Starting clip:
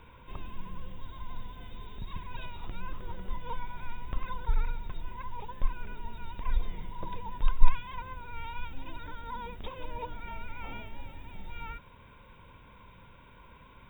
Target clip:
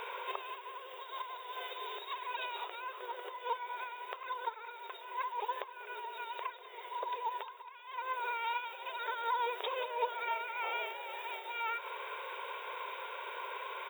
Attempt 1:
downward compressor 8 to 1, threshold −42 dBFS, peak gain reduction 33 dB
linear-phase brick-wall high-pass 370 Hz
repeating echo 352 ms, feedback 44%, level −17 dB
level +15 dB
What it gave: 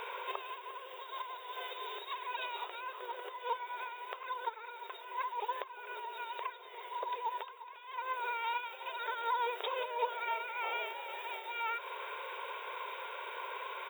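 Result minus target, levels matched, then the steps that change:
echo 158 ms late
change: repeating echo 194 ms, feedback 44%, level −17 dB

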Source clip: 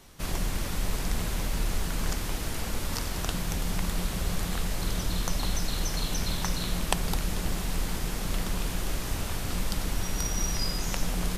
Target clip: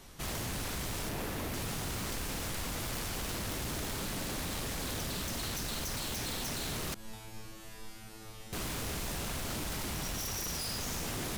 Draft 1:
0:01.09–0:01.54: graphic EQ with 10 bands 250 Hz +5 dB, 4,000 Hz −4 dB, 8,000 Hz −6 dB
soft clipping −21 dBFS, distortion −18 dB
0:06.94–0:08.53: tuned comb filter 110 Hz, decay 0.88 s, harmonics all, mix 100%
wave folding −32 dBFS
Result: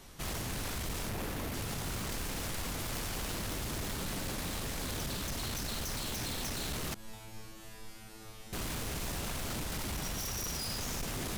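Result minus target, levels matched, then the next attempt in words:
soft clipping: distortion +11 dB
0:01.09–0:01.54: graphic EQ with 10 bands 250 Hz +5 dB, 4,000 Hz −4 dB, 8,000 Hz −6 dB
soft clipping −11.5 dBFS, distortion −30 dB
0:06.94–0:08.53: tuned comb filter 110 Hz, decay 0.88 s, harmonics all, mix 100%
wave folding −32 dBFS

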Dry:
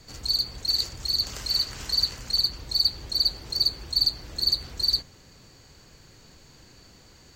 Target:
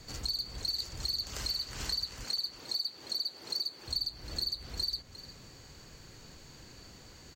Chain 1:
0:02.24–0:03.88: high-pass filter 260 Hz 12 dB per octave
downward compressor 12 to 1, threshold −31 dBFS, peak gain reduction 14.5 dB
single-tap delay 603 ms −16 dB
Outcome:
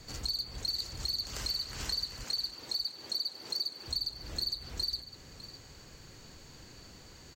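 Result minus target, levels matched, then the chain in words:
echo 250 ms late
0:02.24–0:03.88: high-pass filter 260 Hz 12 dB per octave
downward compressor 12 to 1, threshold −31 dBFS, peak gain reduction 14.5 dB
single-tap delay 353 ms −16 dB

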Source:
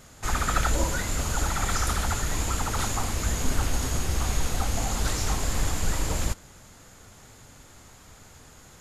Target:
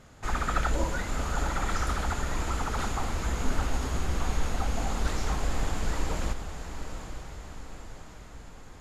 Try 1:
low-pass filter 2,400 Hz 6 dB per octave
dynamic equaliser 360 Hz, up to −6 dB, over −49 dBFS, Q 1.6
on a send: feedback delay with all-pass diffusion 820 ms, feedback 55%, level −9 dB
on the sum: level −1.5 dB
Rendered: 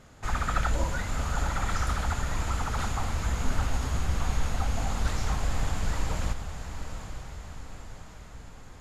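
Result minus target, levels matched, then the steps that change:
500 Hz band −3.0 dB
change: dynamic equaliser 100 Hz, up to −6 dB, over −49 dBFS, Q 1.6

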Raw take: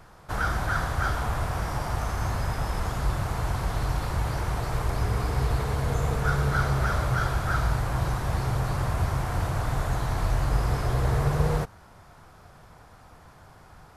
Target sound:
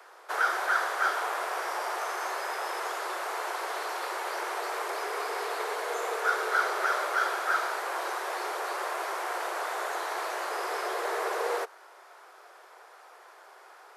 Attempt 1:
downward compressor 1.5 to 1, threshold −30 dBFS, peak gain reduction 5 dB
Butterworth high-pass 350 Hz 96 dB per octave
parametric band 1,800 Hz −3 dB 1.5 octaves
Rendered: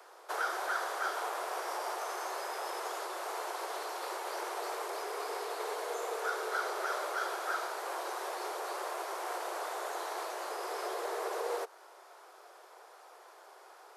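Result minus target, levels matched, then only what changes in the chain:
downward compressor: peak gain reduction +5 dB; 2,000 Hz band −2.5 dB
change: parametric band 1,800 Hz +3.5 dB 1.5 octaves
remove: downward compressor 1.5 to 1, threshold −30 dBFS, peak gain reduction 5 dB

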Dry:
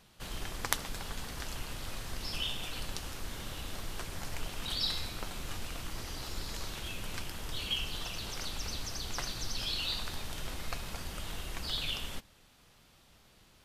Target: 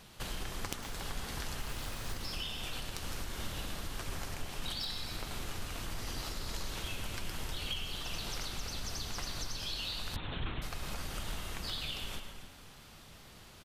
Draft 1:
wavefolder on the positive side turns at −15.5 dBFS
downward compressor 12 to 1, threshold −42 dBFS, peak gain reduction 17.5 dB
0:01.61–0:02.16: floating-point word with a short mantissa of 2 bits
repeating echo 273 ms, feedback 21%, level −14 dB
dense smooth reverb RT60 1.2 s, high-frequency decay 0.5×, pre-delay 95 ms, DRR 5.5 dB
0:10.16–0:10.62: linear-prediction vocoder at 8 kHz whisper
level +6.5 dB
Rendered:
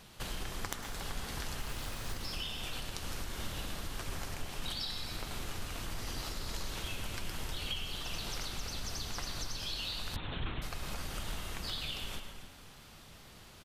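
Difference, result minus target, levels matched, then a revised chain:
wavefolder on the positive side: distortion −5 dB
wavefolder on the positive side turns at −24.5 dBFS
downward compressor 12 to 1, threshold −42 dBFS, peak gain reduction 17.5 dB
0:01.61–0:02.16: floating-point word with a short mantissa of 2 bits
repeating echo 273 ms, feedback 21%, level −14 dB
dense smooth reverb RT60 1.2 s, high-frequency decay 0.5×, pre-delay 95 ms, DRR 5.5 dB
0:10.16–0:10.62: linear-prediction vocoder at 8 kHz whisper
level +6.5 dB

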